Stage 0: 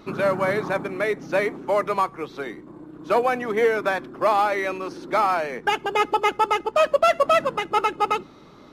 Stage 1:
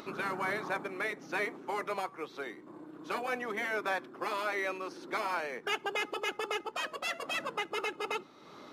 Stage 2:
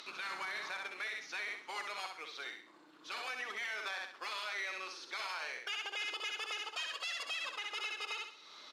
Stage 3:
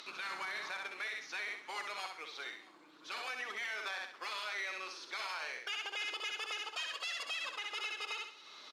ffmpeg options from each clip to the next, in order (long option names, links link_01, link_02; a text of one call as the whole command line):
ffmpeg -i in.wav -af "highpass=frequency=430:poles=1,afftfilt=real='re*lt(hypot(re,im),0.501)':imag='im*lt(hypot(re,im),0.501)':win_size=1024:overlap=0.75,acompressor=mode=upward:threshold=-35dB:ratio=2.5,volume=-6.5dB" out.wav
ffmpeg -i in.wav -filter_complex "[0:a]bandpass=frequency=4200:width_type=q:width=1.2:csg=0,asplit=2[link_01][link_02];[link_02]aecho=0:1:64|128|192|256:0.501|0.18|0.065|0.0234[link_03];[link_01][link_03]amix=inputs=2:normalize=0,alimiter=level_in=13dB:limit=-24dB:level=0:latency=1:release=64,volume=-13dB,volume=6.5dB" out.wav
ffmpeg -i in.wav -af "aecho=1:1:633:0.0794" out.wav